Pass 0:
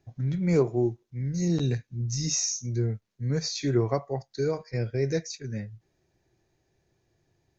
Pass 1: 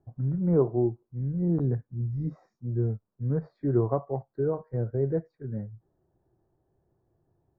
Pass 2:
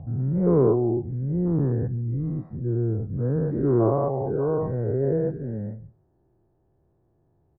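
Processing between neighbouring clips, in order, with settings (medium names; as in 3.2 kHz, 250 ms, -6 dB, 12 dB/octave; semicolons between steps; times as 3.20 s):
inverse Chebyshev low-pass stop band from 2.5 kHz, stop band 40 dB
every event in the spectrogram widened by 240 ms; distance through air 450 m; delay 144 ms -22.5 dB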